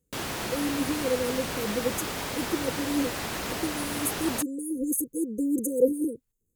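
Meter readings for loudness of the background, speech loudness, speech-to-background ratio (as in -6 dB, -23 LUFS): -32.0 LUFS, -30.0 LUFS, 2.0 dB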